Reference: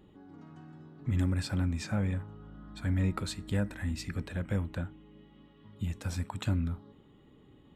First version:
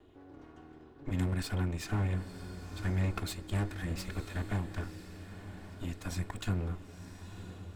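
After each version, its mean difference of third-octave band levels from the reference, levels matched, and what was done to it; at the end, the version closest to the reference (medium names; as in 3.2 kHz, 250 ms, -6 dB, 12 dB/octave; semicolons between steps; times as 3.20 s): 7.0 dB: comb filter that takes the minimum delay 2.8 ms; on a send: echo that smears into a reverb 990 ms, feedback 44%, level -11 dB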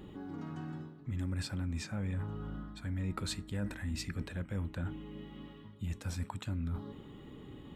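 5.5 dB: peaking EQ 660 Hz -2 dB; reverse; compression 5:1, threshold -45 dBFS, peak gain reduction 17.5 dB; reverse; trim +9 dB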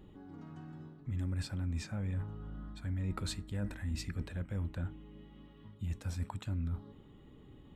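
3.5 dB: bass shelf 85 Hz +10 dB; reverse; compression 6:1, threshold -34 dBFS, peak gain reduction 12.5 dB; reverse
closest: third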